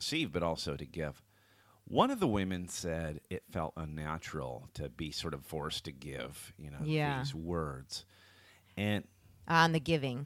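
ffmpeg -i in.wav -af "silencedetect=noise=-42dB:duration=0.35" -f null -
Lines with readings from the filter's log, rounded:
silence_start: 1.11
silence_end: 1.88 | silence_duration: 0.77
silence_start: 8.00
silence_end: 8.77 | silence_duration: 0.78
silence_start: 9.01
silence_end: 9.48 | silence_duration: 0.46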